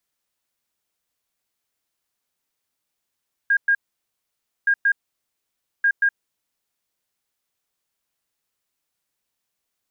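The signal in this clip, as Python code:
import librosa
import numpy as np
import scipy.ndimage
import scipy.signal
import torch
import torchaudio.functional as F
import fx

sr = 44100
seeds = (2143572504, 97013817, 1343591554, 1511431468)

y = fx.beep_pattern(sr, wave='sine', hz=1620.0, on_s=0.07, off_s=0.11, beeps=2, pause_s=0.92, groups=3, level_db=-14.0)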